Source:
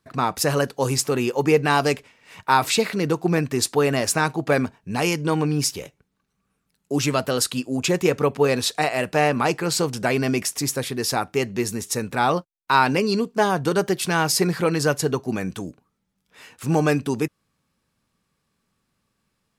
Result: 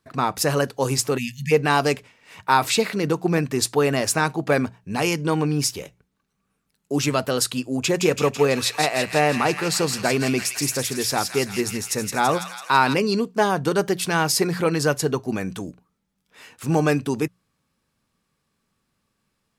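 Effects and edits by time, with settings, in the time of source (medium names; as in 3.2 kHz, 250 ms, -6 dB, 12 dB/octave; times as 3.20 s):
1.18–1.51 s: spectral selection erased 240–1700 Hz
7.77–12.94 s: feedback echo behind a high-pass 166 ms, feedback 63%, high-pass 1.9 kHz, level -4 dB
whole clip: hum notches 60/120/180 Hz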